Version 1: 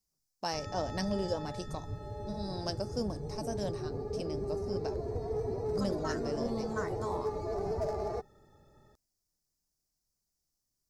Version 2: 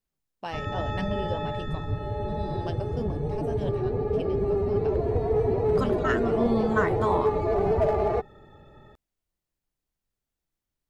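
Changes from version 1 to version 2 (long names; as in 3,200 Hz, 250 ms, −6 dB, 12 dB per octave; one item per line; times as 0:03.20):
second voice +12.0 dB
background +10.5 dB
master: add high shelf with overshoot 4,000 Hz −9.5 dB, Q 3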